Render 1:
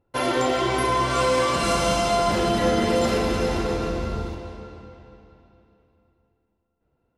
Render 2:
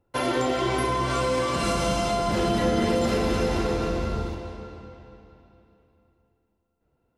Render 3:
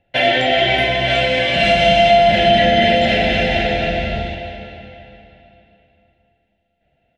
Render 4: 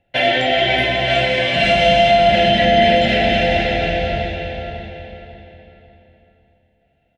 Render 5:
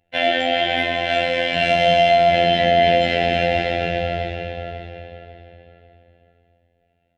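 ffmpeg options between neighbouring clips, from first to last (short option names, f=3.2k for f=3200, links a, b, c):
-filter_complex "[0:a]acrossover=split=370[a][b];[b]acompressor=threshold=-24dB:ratio=6[c];[a][c]amix=inputs=2:normalize=0"
-af "firequalizer=gain_entry='entry(110,0);entry(180,4);entry(300,-4);entry(450,-4);entry(670,14);entry(1100,-20);entry(1700,13);entry(3200,15);entry(4800,-3);entry(10000,-16)':delay=0.05:min_phase=1,volume=4dB"
-filter_complex "[0:a]asplit=2[a][b];[b]adelay=547,lowpass=f=4k:p=1,volume=-8dB,asplit=2[c][d];[d]adelay=547,lowpass=f=4k:p=1,volume=0.33,asplit=2[e][f];[f]adelay=547,lowpass=f=4k:p=1,volume=0.33,asplit=2[g][h];[h]adelay=547,lowpass=f=4k:p=1,volume=0.33[i];[a][c][e][g][i]amix=inputs=5:normalize=0,volume=-1dB"
-af "afftfilt=real='hypot(re,im)*cos(PI*b)':imag='0':win_size=2048:overlap=0.75,volume=-1.5dB"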